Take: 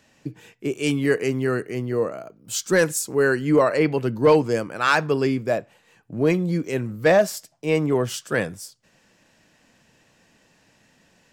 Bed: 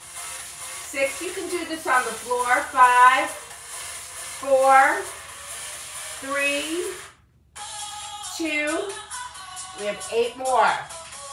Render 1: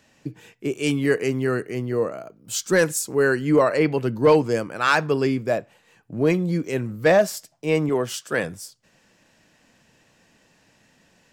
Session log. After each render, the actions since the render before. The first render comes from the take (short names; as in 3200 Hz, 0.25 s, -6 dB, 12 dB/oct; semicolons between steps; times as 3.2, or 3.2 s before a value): 7.89–8.44 HPF 220 Hz 6 dB/oct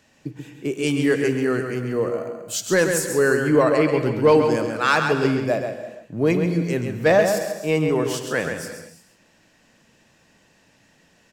outdoor echo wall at 23 m, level -6 dB; non-linear reverb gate 0.38 s flat, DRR 9.5 dB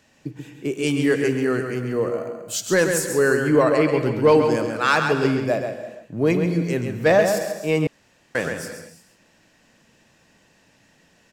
7.87–8.35 room tone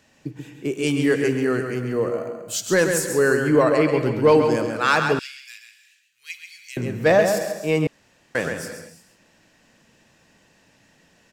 5.19–6.77 inverse Chebyshev high-pass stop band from 710 Hz, stop band 60 dB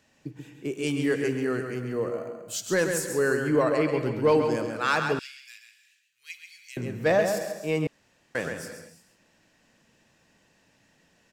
gain -6 dB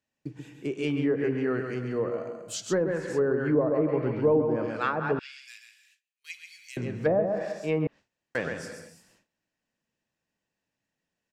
gate with hold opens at -51 dBFS; treble ducked by the level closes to 630 Hz, closed at -19 dBFS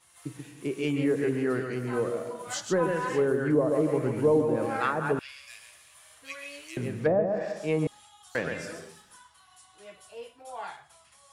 add bed -20 dB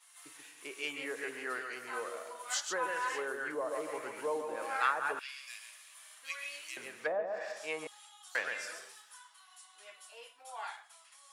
HPF 1000 Hz 12 dB/oct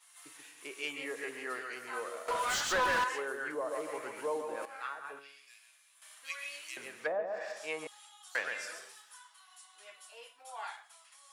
0.94–1.64 notch 1500 Hz, Q 10; 2.28–3.04 overdrive pedal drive 27 dB, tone 2900 Hz, clips at -22.5 dBFS; 4.65–6.02 resonator 140 Hz, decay 0.59 s, mix 80%